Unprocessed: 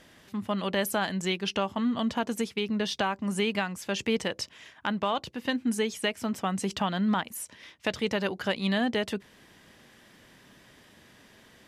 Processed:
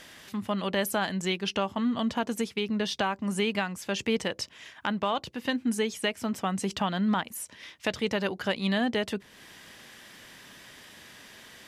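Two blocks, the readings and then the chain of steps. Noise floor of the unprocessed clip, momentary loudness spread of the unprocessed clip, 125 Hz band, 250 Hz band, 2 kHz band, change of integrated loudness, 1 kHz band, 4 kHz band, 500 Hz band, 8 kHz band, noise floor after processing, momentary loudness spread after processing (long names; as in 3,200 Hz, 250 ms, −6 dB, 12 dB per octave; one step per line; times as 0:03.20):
−57 dBFS, 7 LU, 0.0 dB, 0.0 dB, 0.0 dB, 0.0 dB, 0.0 dB, 0.0 dB, 0.0 dB, 0.0 dB, −54 dBFS, 20 LU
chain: one half of a high-frequency compander encoder only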